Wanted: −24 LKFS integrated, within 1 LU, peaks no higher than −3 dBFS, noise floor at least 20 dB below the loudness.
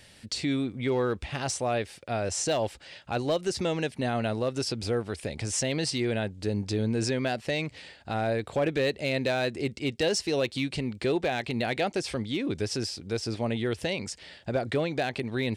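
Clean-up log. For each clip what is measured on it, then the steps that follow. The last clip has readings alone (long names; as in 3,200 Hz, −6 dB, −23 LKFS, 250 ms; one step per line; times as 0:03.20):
share of clipped samples 0.4%; peaks flattened at −19.5 dBFS; integrated loudness −29.5 LKFS; sample peak −19.5 dBFS; target loudness −24.0 LKFS
→ clipped peaks rebuilt −19.5 dBFS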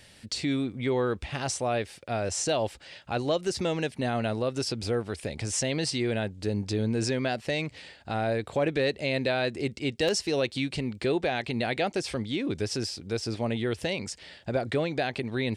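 share of clipped samples 0.0%; integrated loudness −29.5 LKFS; sample peak −10.5 dBFS; target loudness −24.0 LKFS
→ level +5.5 dB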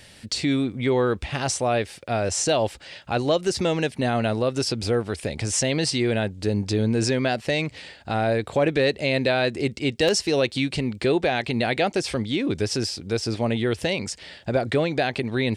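integrated loudness −24.0 LKFS; sample peak −5.0 dBFS; background noise floor −48 dBFS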